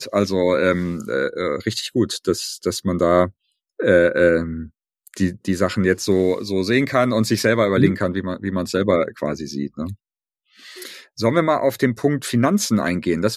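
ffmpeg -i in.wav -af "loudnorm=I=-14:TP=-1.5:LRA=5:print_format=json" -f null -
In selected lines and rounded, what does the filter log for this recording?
"input_i" : "-19.8",
"input_tp" : "-1.6",
"input_lra" : "4.5",
"input_thresh" : "-30.4",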